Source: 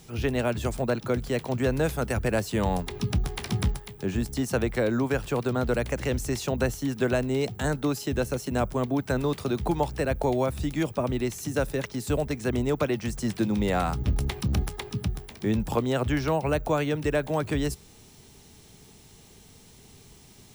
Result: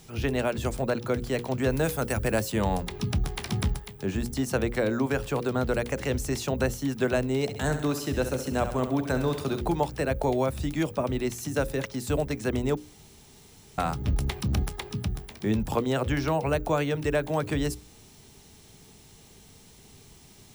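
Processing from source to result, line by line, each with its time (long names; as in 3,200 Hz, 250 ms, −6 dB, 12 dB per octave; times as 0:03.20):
0:01.70–0:02.52: high-shelf EQ 9,600 Hz +8.5 dB
0:07.42–0:09.61: repeating echo 67 ms, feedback 55%, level −9.5 dB
0:12.77–0:13.78: fill with room tone
whole clip: mains-hum notches 60/120/180/240/300/360/420/480/540 Hz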